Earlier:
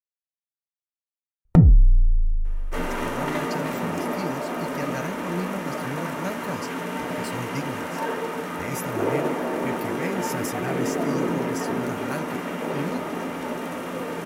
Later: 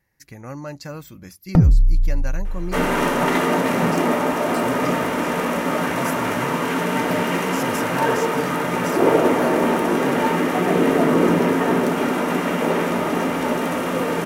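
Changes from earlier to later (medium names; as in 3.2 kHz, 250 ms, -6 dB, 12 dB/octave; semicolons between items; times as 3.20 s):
speech: entry -2.70 s; second sound +8.5 dB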